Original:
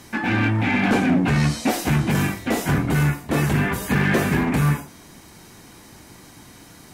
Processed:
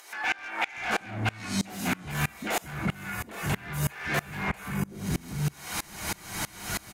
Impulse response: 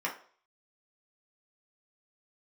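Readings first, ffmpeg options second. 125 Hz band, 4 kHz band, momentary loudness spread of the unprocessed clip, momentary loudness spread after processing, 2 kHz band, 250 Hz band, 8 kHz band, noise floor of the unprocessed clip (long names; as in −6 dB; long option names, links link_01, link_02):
−11.5 dB, −4.0 dB, 4 LU, 5 LU, −6.5 dB, −13.5 dB, −2.5 dB, −46 dBFS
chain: -filter_complex "[0:a]asplit=2[link_01][link_02];[link_02]highshelf=frequency=6400:gain=7[link_03];[1:a]atrim=start_sample=2205,asetrate=52920,aresample=44100[link_04];[link_03][link_04]afir=irnorm=-1:irlink=0,volume=-6.5dB[link_05];[link_01][link_05]amix=inputs=2:normalize=0,acompressor=mode=upward:threshold=-18dB:ratio=2.5,equalizer=frequency=280:width=1.4:gain=-6.5,acrossover=split=410[link_06][link_07];[link_06]adelay=770[link_08];[link_08][link_07]amix=inputs=2:normalize=0,asoftclip=type=tanh:threshold=-17dB,acompressor=threshold=-26dB:ratio=6,aeval=exprs='val(0)*pow(10,-27*if(lt(mod(-3.1*n/s,1),2*abs(-3.1)/1000),1-mod(-3.1*n/s,1)/(2*abs(-3.1)/1000),(mod(-3.1*n/s,1)-2*abs(-3.1)/1000)/(1-2*abs(-3.1)/1000))/20)':channel_layout=same,volume=5dB"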